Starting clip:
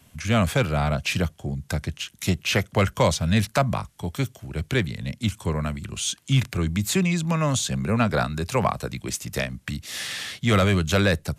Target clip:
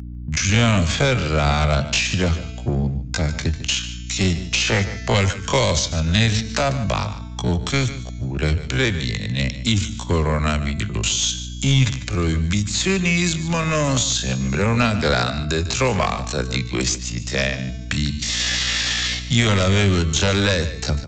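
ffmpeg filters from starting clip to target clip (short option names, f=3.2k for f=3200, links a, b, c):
-filter_complex "[0:a]anlmdn=0.251,aemphasis=mode=production:type=75fm,bandreject=f=222.1:t=h:w=4,bandreject=f=444.2:t=h:w=4,bandreject=f=666.3:t=h:w=4,bandreject=f=888.4:t=h:w=4,bandreject=f=1.1105k:t=h:w=4,bandreject=f=1.3326k:t=h:w=4,bandreject=f=1.5547k:t=h:w=4,bandreject=f=1.7768k:t=h:w=4,bandreject=f=1.9989k:t=h:w=4,bandreject=f=2.221k:t=h:w=4,bandreject=f=2.4431k:t=h:w=4,bandreject=f=2.6652k:t=h:w=4,bandreject=f=2.8873k:t=h:w=4,bandreject=f=3.1094k:t=h:w=4,bandreject=f=3.3315k:t=h:w=4,bandreject=f=3.5536k:t=h:w=4,bandreject=f=3.7757k:t=h:w=4,bandreject=f=3.9978k:t=h:w=4,bandreject=f=4.2199k:t=h:w=4,bandreject=f=4.442k:t=h:w=4,bandreject=f=4.6641k:t=h:w=4,bandreject=f=4.8862k:t=h:w=4,bandreject=f=5.1083k:t=h:w=4,bandreject=f=5.3304k:t=h:w=4,bandreject=f=5.5525k:t=h:w=4,bandreject=f=5.7746k:t=h:w=4,bandreject=f=5.9967k:t=h:w=4,bandreject=f=6.2188k:t=h:w=4,bandreject=f=6.4409k:t=h:w=4,bandreject=f=6.663k:t=h:w=4,bandreject=f=6.8851k:t=h:w=4,bandreject=f=7.1072k:t=h:w=4,bandreject=f=7.3293k:t=h:w=4,adynamicequalizer=threshold=0.0126:dfrequency=160:dqfactor=1.3:tfrequency=160:tqfactor=1.3:attack=5:release=100:ratio=0.375:range=3:mode=cutabove:tftype=bell,asplit=2[a][b];[b]acompressor=threshold=-30dB:ratio=6,volume=0dB[c];[a][c]amix=inputs=2:normalize=0,alimiter=limit=-8.5dB:level=0:latency=1:release=218,acrossover=split=120|600|1500|5000[d][e][f][g][h];[e]acompressor=threshold=-24dB:ratio=4[i];[f]acompressor=threshold=-33dB:ratio=4[j];[g]acompressor=threshold=-26dB:ratio=4[k];[h]acompressor=threshold=-31dB:ratio=4[l];[d][i][j][k][l]amix=inputs=5:normalize=0,aresample=16000,aeval=exprs='clip(val(0),-1,0.0841)':c=same,aresample=44100,aeval=exprs='val(0)+0.0141*(sin(2*PI*60*n/s)+sin(2*PI*2*60*n/s)/2+sin(2*PI*3*60*n/s)/3+sin(2*PI*4*60*n/s)/4+sin(2*PI*5*60*n/s)/5)':c=same,atempo=0.54,aecho=1:1:148:0.2,volume=6dB"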